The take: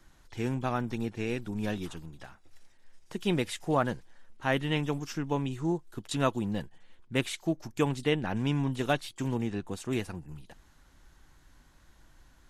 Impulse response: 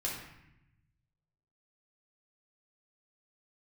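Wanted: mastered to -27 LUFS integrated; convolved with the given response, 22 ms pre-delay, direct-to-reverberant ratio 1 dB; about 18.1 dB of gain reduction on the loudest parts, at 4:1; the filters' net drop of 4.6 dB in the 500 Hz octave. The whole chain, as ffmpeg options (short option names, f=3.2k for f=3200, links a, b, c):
-filter_complex "[0:a]equalizer=f=500:t=o:g=-6,acompressor=threshold=-47dB:ratio=4,asplit=2[a][b];[1:a]atrim=start_sample=2205,adelay=22[c];[b][c]afir=irnorm=-1:irlink=0,volume=-4.5dB[d];[a][d]amix=inputs=2:normalize=0,volume=19dB"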